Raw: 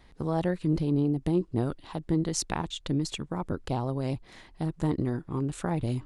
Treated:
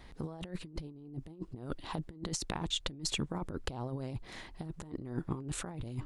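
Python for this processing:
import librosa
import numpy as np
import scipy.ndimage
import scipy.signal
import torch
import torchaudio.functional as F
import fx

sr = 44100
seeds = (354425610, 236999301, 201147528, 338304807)

y = fx.over_compress(x, sr, threshold_db=-34.0, ratio=-0.5)
y = F.gain(torch.from_numpy(y), -3.5).numpy()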